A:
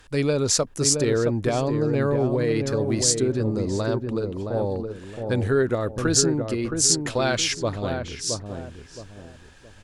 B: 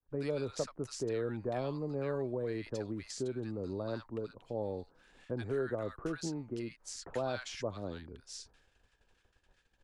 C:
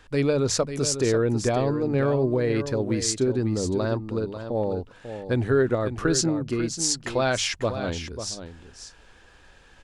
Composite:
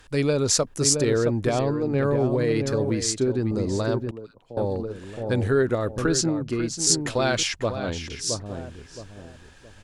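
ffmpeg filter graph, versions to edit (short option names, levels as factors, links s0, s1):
-filter_complex "[2:a]asplit=4[s0][s1][s2][s3];[0:a]asplit=6[s4][s5][s6][s7][s8][s9];[s4]atrim=end=1.592[s10];[s0]atrim=start=1.588:end=2.042[s11];[s5]atrim=start=2.038:end=2.902[s12];[s1]atrim=start=2.898:end=3.512[s13];[s6]atrim=start=3.508:end=4.112[s14];[1:a]atrim=start=4.108:end=4.572[s15];[s7]atrim=start=4.568:end=6.062[s16];[s2]atrim=start=6.058:end=6.872[s17];[s8]atrim=start=6.868:end=7.432[s18];[s3]atrim=start=7.428:end=8.102[s19];[s9]atrim=start=8.098[s20];[s10][s11]acrossfade=d=0.004:c1=hsin:c2=hsin[s21];[s21][s12]acrossfade=d=0.004:c1=hsin:c2=hsin[s22];[s22][s13]acrossfade=d=0.004:c1=hsin:c2=hsin[s23];[s23][s14]acrossfade=d=0.004:c1=hsin:c2=hsin[s24];[s24][s15]acrossfade=d=0.004:c1=hsin:c2=hsin[s25];[s25][s16]acrossfade=d=0.004:c1=hsin:c2=hsin[s26];[s26][s17]acrossfade=d=0.004:c1=hsin:c2=hsin[s27];[s27][s18]acrossfade=d=0.004:c1=hsin:c2=hsin[s28];[s28][s19]acrossfade=d=0.004:c1=hsin:c2=hsin[s29];[s29][s20]acrossfade=d=0.004:c1=hsin:c2=hsin"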